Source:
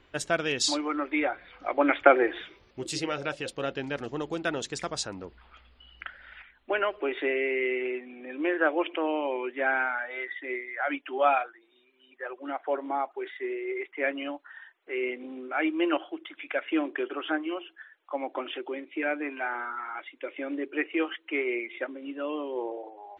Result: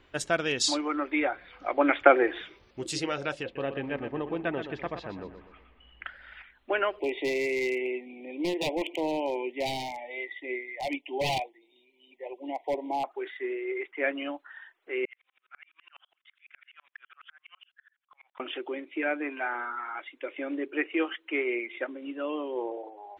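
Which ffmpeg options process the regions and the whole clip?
-filter_complex "[0:a]asettb=1/sr,asplit=3[a][b][c];[a]atrim=end=3.434[d];[b]atrim=start=3.43:end=6.05,asetpts=PTS-STARTPTS,afade=t=in:d=0.004:c=qsin,afade=t=out:st=2.616:d=0.004:c=qsin,lowpass=f=2.7k:w=0.5412,lowpass=f=2.7k:w=1.3066,bandreject=f=1.4k:w=6.5,aecho=1:1:123|246|369|492|615:0.355|0.145|0.0596|0.0245|0.01,atrim=end_sample=115542[e];[c]atrim=start=6.046[f];[d][e]acrossfade=d=0.004:c1=hsin:c2=qsin[g];[g][f]acrossfade=d=0.004:c1=qsin:c2=hsin,asettb=1/sr,asplit=3[h][i][j];[h]atrim=end=6.994[k];[i]atrim=start=6.99:end=13.04,asetpts=PTS-STARTPTS,afade=t=in:d=0.004:c=qsin,afade=t=out:st=6.046:d=0.004:c=qsin,aeval=exprs='0.0794*(abs(mod(val(0)/0.0794+3,4)-2)-1)':c=same,asuperstop=centerf=1400:order=12:qfactor=1.4[l];[j]atrim=start=13.036[m];[k][l]acrossfade=d=0.004:c1=hsin:c2=qsin[n];[n][m]acrossfade=d=0.004:c1=qsin:c2=hsin,asettb=1/sr,asplit=3[o][p][q];[o]atrim=end=15.054[r];[p]atrim=start=15.05:end=18.4,asetpts=PTS-STARTPTS,afade=t=in:d=0.004:c=qsin,afade=t=out:st=3.346:d=0.004:c=qsin,highpass=f=1.3k:w=0.5412,highpass=f=1.3k:w=1.3066,acompressor=threshold=-38dB:ratio=6:attack=3.2:release=140:knee=1:detection=peak,aeval=exprs='val(0)*pow(10,-39*if(lt(mod(-12*n/s,1),2*abs(-12)/1000),1-mod(-12*n/s,1)/(2*abs(-12)/1000),(mod(-12*n/s,1)-2*abs(-12)/1000)/(1-2*abs(-12)/1000))/20)':c=same[s];[q]atrim=start=18.396[t];[r][s]acrossfade=d=0.004:c1=hsin:c2=qsin[u];[u][t]acrossfade=d=0.004:c1=qsin:c2=hsin"

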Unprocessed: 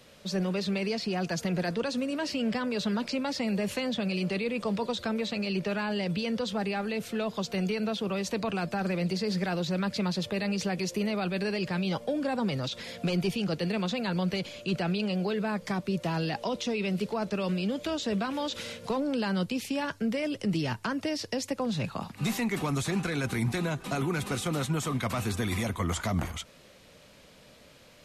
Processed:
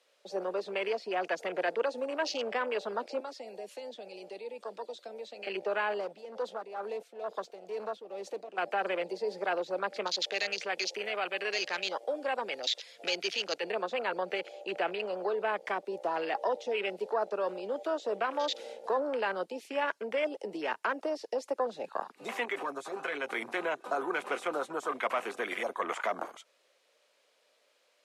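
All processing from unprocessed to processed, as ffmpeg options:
-filter_complex "[0:a]asettb=1/sr,asplit=3[a][b][c];[a]atrim=end=3.204[d];[b]atrim=start=3.2:end=5.47,asetpts=PTS-STARTPTS,afade=t=in:d=0.004:c=qsin,afade=t=out:st=2.266:d=0.004:c=qsin,lowshelf=f=330:g=-9.5,acrossover=split=280|3000[e][f][g];[f]acompressor=threshold=-53dB:ratio=1.5:attack=3.2:release=140:knee=2.83:detection=peak[h];[e][h][g]amix=inputs=3:normalize=0[i];[c]atrim=start=5.466[j];[d][i]acrossfade=d=0.004:c1=hsin:c2=qsin[k];[k][j]acrossfade=d=0.004:c1=qsin:c2=hsin,asettb=1/sr,asplit=3[l][m][n];[l]atrim=end=6.004[o];[m]atrim=start=6:end=8.58,asetpts=PTS-STARTPTS,afade=t=in:d=0.004:c=qsin,afade=t=out:st=2.576:d=0.004:c=qsin,asoftclip=type=hard:threshold=-29dB,tremolo=f=2.2:d=0.65[p];[n]atrim=start=8.576[q];[o][p]acrossfade=d=0.004:c1=hsin:c2=qsin[r];[r][q]acrossfade=d=0.004:c1=qsin:c2=hsin,asettb=1/sr,asplit=3[s][t][u];[s]atrim=end=10.074[v];[t]atrim=start=10.07:end=13.64,asetpts=PTS-STARTPTS,afade=t=in:d=0.004:c=qsin,afade=t=out:st=3.566:d=0.004:c=qsin,acrossover=split=7300[w][x];[x]acompressor=threshold=-57dB:ratio=4:attack=1:release=60[y];[w][y]amix=inputs=2:normalize=0,tiltshelf=f=1.5k:g=-5[z];[u]atrim=start=13.636[aa];[v][z]acrossfade=d=0.004:c1=hsin:c2=qsin[ab];[ab][aa]acrossfade=d=0.004:c1=qsin:c2=hsin,asettb=1/sr,asplit=3[ac][ad][ae];[ac]atrim=end=22.454[af];[ad]atrim=start=22.45:end=23.31,asetpts=PTS-STARTPTS,afade=t=in:d=0.004:c=qsin,afade=t=out:st=0.856:d=0.004:c=qsin,aecho=1:1:7.4:0.51,atrim=end_sample=37926,acompressor=threshold=-29dB:ratio=4:attack=3.2:release=140:knee=1:detection=peak[ag];[ae]atrim=start=23.306[ah];[af][ag]acrossfade=d=0.004:c1=hsin:c2=qsin[ai];[ai][ah]acrossfade=d=0.004:c1=qsin:c2=hsin,lowpass=f=12k:w=0.5412,lowpass=f=12k:w=1.3066,afwtdn=0.0141,highpass=f=420:w=0.5412,highpass=f=420:w=1.3066,volume=3dB"

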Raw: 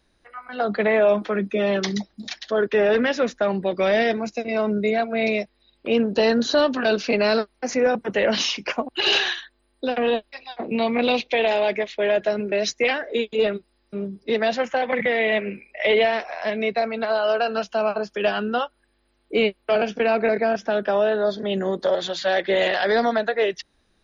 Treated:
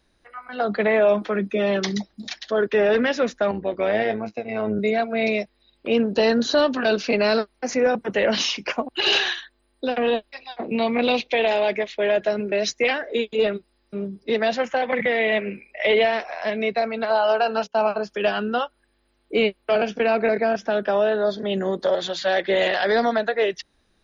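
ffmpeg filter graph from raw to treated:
-filter_complex "[0:a]asettb=1/sr,asplit=3[a][b][c];[a]atrim=end=3.514[d];[b]atrim=start=3.51:end=4.79,asetpts=PTS-STARTPTS,afade=t=in:d=0.004:c=qsin,afade=t=out:st=1.276:d=0.004:c=qsin,highpass=140,lowpass=2.8k,tremolo=f=110:d=0.571,asplit=2[e][f];[f]adelay=19,volume=-10.5dB[g];[e][g]amix=inputs=2:normalize=0,atrim=end_sample=56448[h];[c]atrim=start=4.786[i];[d][h]acrossfade=d=0.004:c1=hsin:c2=qsin[j];[j][i]acrossfade=d=0.004:c1=qsin:c2=hsin,asettb=1/sr,asplit=3[k][l][m];[k]atrim=end=17.104[n];[l]atrim=start=17.1:end=17.87,asetpts=PTS-STARTPTS,afade=t=in:d=0.004:c=qsin,afade=t=out:st=0.766:d=0.004:c=qsin,equalizer=f=860:t=o:w=0.32:g=9,bandreject=f=60:t=h:w=6,bandreject=f=120:t=h:w=6,bandreject=f=180:t=h:w=6,bandreject=f=240:t=h:w=6,bandreject=f=300:t=h:w=6,bandreject=f=360:t=h:w=6,bandreject=f=420:t=h:w=6,bandreject=f=480:t=h:w=6,bandreject=f=540:t=h:w=6,agate=range=-21dB:threshold=-35dB:ratio=16:release=100:detection=peak[o];[m]atrim=start=17.866[p];[n][o]acrossfade=d=0.004:c1=hsin:c2=qsin[q];[q][p]acrossfade=d=0.004:c1=qsin:c2=hsin"

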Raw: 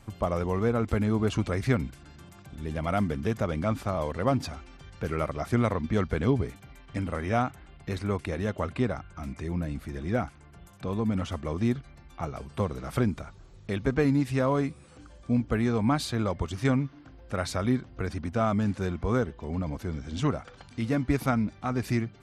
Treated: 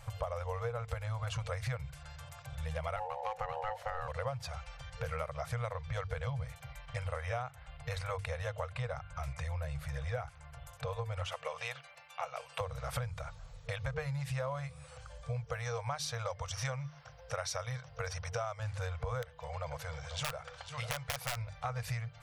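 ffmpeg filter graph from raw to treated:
-filter_complex "[0:a]asettb=1/sr,asplit=3[a][b][c];[a]atrim=end=2.964[d];[b]atrim=start=2.96:end=4.08,asetpts=PTS-STARTPTS,afade=t=in:d=0.004:c=qsin,afade=t=out:st=1.116:d=0.004:c=qsin,highshelf=f=3.9k:g=-8,aeval=exprs='val(0)*sin(2*PI*640*n/s)':c=same[e];[c]atrim=start=4.076[f];[d][e]acrossfade=d=0.004:c1=hsin:c2=qsin[g];[g][f]acrossfade=d=0.004:c1=qsin:c2=hsin,asettb=1/sr,asplit=3[h][i][j];[h]atrim=end=11.264[k];[i]atrim=start=11.26:end=12.61,asetpts=PTS-STARTPTS,afade=t=in:d=0.004:c=qsin,afade=t=out:st=1.346:d=0.004:c=qsin,highpass=430,equalizer=f=2.7k:w=3.6:g=8[l];[j]atrim=start=12.606[m];[k][l]acrossfade=d=0.004:c1=hsin:c2=qsin[n];[n][m]acrossfade=d=0.004:c1=qsin:c2=hsin,asettb=1/sr,asplit=3[o][p][q];[o]atrim=end=15.444[r];[p]atrim=start=15.44:end=18.6,asetpts=PTS-STARTPTS,afade=t=in:d=0.004:c=qsin,afade=t=out:st=3.156:d=0.004:c=qsin,highpass=f=150:p=1,equalizer=f=5.7k:w=7:g=14[s];[q]atrim=start=18.596[t];[r][s]acrossfade=d=0.004:c1=hsin:c2=qsin[u];[u][t]acrossfade=d=0.004:c1=qsin:c2=hsin,asettb=1/sr,asplit=3[v][w][x];[v]atrim=end=19.224[y];[w]atrim=start=19.22:end=21.37,asetpts=PTS-STARTPTS,afade=t=in:d=0.004:c=qsin,afade=t=out:st=2.146:d=0.004:c=qsin,lowshelf=f=230:g=-10.5,aecho=1:1:493:0.224,atrim=end_sample=94815,aeval=exprs='(mod(13.3*val(0)+1,2)-1)/13.3':c=same[z];[x]atrim=start=21.366[aa];[y][z]acrossfade=d=0.004:c1=hsin:c2=qsin[ab];[ab][aa]acrossfade=d=0.004:c1=qsin:c2=hsin,afftfilt=real='re*(1-between(b*sr/4096,160,460))':imag='im*(1-between(b*sr/4096,160,460))':win_size=4096:overlap=0.75,bandreject=f=50:t=h:w=6,bandreject=f=100:t=h:w=6,bandreject=f=150:t=h:w=6,acompressor=threshold=-37dB:ratio=6,volume=2.5dB"

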